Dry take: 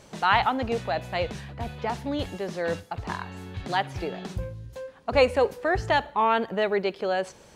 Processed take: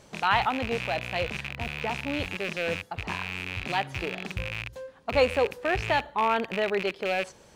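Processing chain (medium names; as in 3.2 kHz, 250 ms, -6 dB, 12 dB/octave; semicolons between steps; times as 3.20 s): rattle on loud lows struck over -38 dBFS, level -18 dBFS; trim -2.5 dB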